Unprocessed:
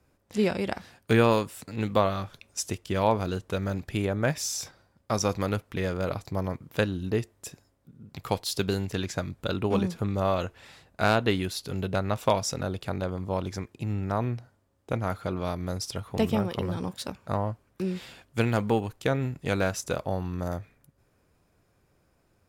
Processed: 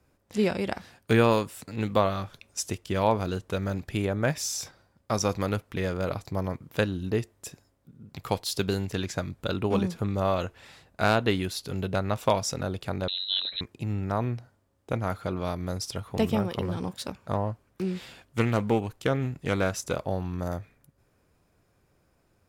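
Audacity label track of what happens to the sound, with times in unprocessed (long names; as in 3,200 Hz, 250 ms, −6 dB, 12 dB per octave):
13.080000	13.610000	voice inversion scrambler carrier 4,000 Hz
16.610000	20.390000	highs frequency-modulated by the lows depth 0.2 ms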